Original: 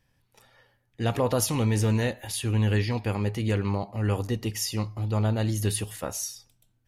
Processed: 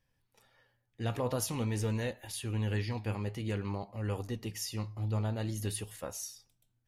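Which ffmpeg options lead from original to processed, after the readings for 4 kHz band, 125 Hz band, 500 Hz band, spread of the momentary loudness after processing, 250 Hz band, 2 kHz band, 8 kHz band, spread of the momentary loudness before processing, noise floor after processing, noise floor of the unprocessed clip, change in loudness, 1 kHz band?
-8.5 dB, -8.5 dB, -8.5 dB, 7 LU, -9.0 dB, -8.5 dB, -8.5 dB, 7 LU, -78 dBFS, -71 dBFS, -8.5 dB, -8.5 dB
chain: -af "flanger=delay=1.8:depth=7.6:regen=77:speed=0.5:shape=sinusoidal,volume=-4dB"

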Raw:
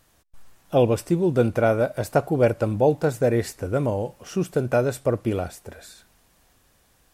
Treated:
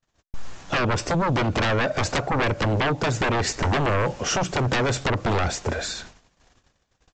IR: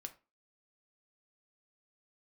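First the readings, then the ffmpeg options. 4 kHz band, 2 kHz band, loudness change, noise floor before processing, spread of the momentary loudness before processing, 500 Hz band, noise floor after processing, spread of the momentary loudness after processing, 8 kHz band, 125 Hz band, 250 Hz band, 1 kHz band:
+13.5 dB, +8.5 dB, -1.0 dB, -62 dBFS, 9 LU, -5.0 dB, -71 dBFS, 5 LU, +9.0 dB, +1.0 dB, -2.5 dB, +5.0 dB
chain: -af "agate=range=-45dB:threshold=-57dB:ratio=16:detection=peak,acompressor=threshold=-26dB:ratio=10,aresample=16000,aeval=exprs='0.119*sin(PI/2*4.47*val(0)/0.119)':c=same,aresample=44100"

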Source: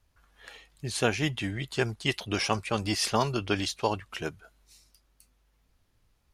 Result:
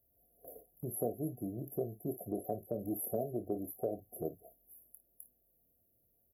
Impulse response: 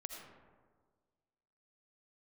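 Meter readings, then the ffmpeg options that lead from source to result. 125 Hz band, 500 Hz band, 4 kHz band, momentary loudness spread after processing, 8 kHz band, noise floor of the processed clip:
-11.5 dB, -6.0 dB, under -40 dB, 20 LU, -11.5 dB, -75 dBFS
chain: -filter_complex "[0:a]afftfilt=real='re*(1-between(b*sr/4096,750,11000))':imag='im*(1-between(b*sr/4096,750,11000))':win_size=4096:overlap=0.75,agate=range=-8dB:threshold=-59dB:ratio=16:detection=peak,highpass=f=310:p=1,aemphasis=mode=production:type=50kf,acompressor=threshold=-51dB:ratio=2,asplit=2[a][b];[b]aecho=0:1:25|54:0.316|0.168[c];[a][c]amix=inputs=2:normalize=0,volume=7.5dB"

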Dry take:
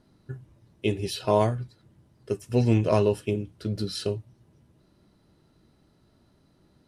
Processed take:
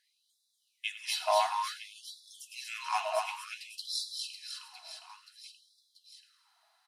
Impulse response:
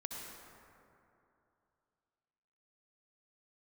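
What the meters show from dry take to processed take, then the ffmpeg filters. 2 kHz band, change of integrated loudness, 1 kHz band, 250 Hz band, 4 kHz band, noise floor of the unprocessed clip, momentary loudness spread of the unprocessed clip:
+2.0 dB, -8.0 dB, +1.0 dB, under -40 dB, +2.5 dB, -64 dBFS, 20 LU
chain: -filter_complex "[0:a]aecho=1:1:240|552|957.6|1485|2170:0.631|0.398|0.251|0.158|0.1,asplit=2[a][b];[1:a]atrim=start_sample=2205,adelay=97[c];[b][c]afir=irnorm=-1:irlink=0,volume=-9.5dB[d];[a][d]amix=inputs=2:normalize=0,afftfilt=real='re*gte(b*sr/1024,630*pow(3400/630,0.5+0.5*sin(2*PI*0.56*pts/sr)))':imag='im*gte(b*sr/1024,630*pow(3400/630,0.5+0.5*sin(2*PI*0.56*pts/sr)))':win_size=1024:overlap=0.75"

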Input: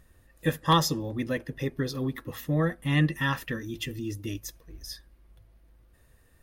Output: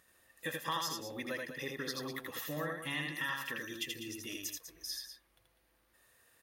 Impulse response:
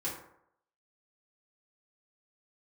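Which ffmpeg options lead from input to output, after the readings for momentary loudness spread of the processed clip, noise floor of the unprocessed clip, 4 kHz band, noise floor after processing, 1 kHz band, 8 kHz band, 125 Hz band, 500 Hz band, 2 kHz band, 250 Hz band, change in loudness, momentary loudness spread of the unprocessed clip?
6 LU, -61 dBFS, -5.5 dB, -73 dBFS, -11.0 dB, -3.5 dB, -20.0 dB, -10.0 dB, -4.5 dB, -14.5 dB, -10.0 dB, 18 LU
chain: -af "highpass=f=1.1k:p=1,acompressor=threshold=-36dB:ratio=4,aecho=1:1:81.63|198.3:0.708|0.316"

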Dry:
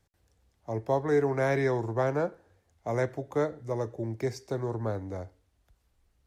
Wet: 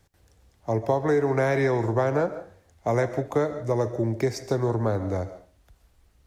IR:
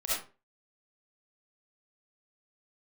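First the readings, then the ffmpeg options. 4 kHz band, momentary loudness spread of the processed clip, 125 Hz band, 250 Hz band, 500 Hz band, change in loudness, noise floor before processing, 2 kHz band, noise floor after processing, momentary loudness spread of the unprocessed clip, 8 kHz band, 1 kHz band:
+6.0 dB, 8 LU, +6.0 dB, +5.5 dB, +4.5 dB, +5.0 dB, -72 dBFS, +4.0 dB, -63 dBFS, 12 LU, n/a, +5.0 dB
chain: -filter_complex "[0:a]acompressor=threshold=-28dB:ratio=6,asplit=2[a][b];[1:a]atrim=start_sample=2205,adelay=75[c];[b][c]afir=irnorm=-1:irlink=0,volume=-19dB[d];[a][d]amix=inputs=2:normalize=0,volume=9dB"

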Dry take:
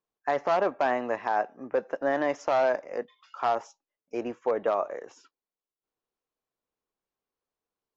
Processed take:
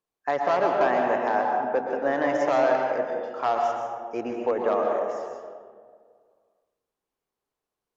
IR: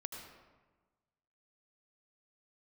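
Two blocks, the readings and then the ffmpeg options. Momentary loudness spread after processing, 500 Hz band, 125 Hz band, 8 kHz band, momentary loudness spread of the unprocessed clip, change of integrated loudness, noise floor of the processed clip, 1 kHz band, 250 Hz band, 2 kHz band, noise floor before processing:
10 LU, +4.0 dB, +4.5 dB, n/a, 11 LU, +3.5 dB, under -85 dBFS, +4.5 dB, +4.5 dB, +3.5 dB, under -85 dBFS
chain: -filter_complex "[1:a]atrim=start_sample=2205,asetrate=29106,aresample=44100[a];[0:a][a]afir=irnorm=-1:irlink=0,volume=3dB"

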